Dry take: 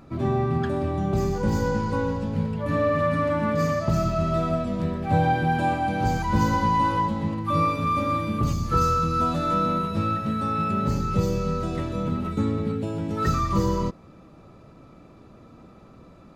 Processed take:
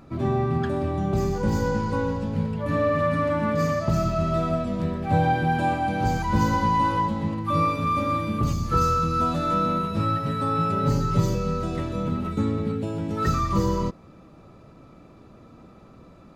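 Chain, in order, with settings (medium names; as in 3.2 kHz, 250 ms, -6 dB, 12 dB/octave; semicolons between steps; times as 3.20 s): 9.99–11.35 s: comb 7.1 ms, depth 84%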